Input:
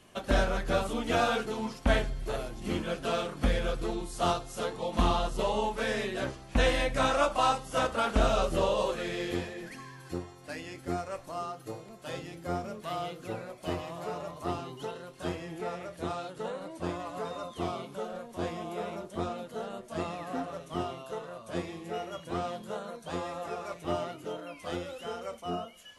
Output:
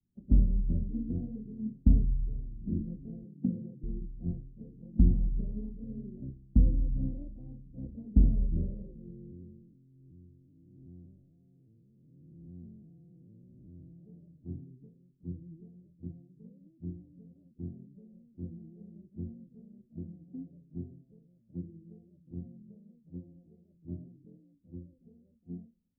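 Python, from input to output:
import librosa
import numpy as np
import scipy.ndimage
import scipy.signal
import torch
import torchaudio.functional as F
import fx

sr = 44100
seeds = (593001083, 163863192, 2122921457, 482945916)

y = fx.highpass(x, sr, hz=130.0, slope=24, at=(3.24, 3.83))
y = fx.spec_blur(y, sr, span_ms=337.0, at=(9.1, 13.92), fade=0.02)
y = fx.notch_cascade(y, sr, direction='rising', hz=1.7, at=(14.88, 17.36))
y = scipy.signal.sosfilt(scipy.signal.cheby2(4, 70, 1100.0, 'lowpass', fs=sr, output='sos'), y)
y = fx.band_widen(y, sr, depth_pct=70)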